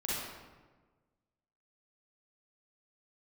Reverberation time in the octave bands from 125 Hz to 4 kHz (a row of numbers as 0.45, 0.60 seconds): 1.7, 1.5, 1.4, 1.3, 1.1, 0.80 seconds